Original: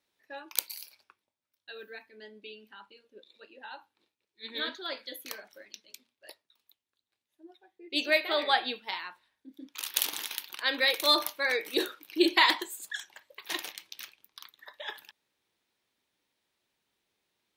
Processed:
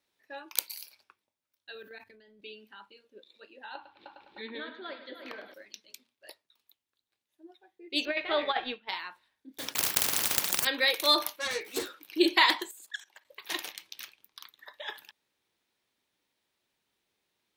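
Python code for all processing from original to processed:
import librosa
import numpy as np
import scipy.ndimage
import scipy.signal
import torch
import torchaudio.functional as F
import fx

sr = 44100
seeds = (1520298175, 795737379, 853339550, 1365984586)

y = fx.chain(x, sr, fx.peak_eq(hz=100.0, db=14.5, octaves=0.83),
    fx.level_steps(step_db=15),
    fx.transient(attack_db=-2, sustain_db=8), at=(1.75, 2.42))
y = fx.chain(y, sr, fx.air_absorb(metres=390.0),
    fx.echo_heads(ms=102, heads='first and third', feedback_pct=44, wet_db=-13.5),
    fx.band_squash(depth_pct=100), at=(3.75, 5.54))
y = fx.chain(y, sr, fx.law_mismatch(coded='A'),
    fx.lowpass(hz=3400.0, slope=24),
    fx.over_compress(threshold_db=-27.0, ratio=-0.5), at=(8.05, 8.89))
y = fx.chain(y, sr, fx.block_float(bits=5),
    fx.highpass(hz=130.0, slope=12),
    fx.spectral_comp(ratio=10.0), at=(9.58, 10.67))
y = fx.chain(y, sr, fx.self_delay(depth_ms=0.22),
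    fx.highpass(hz=57.0, slope=12),
    fx.ensemble(), at=(11.36, 11.96))
y = fx.chain(y, sr, fx.highpass(hz=280.0, slope=12),
    fx.level_steps(step_db=17), at=(12.71, 13.25))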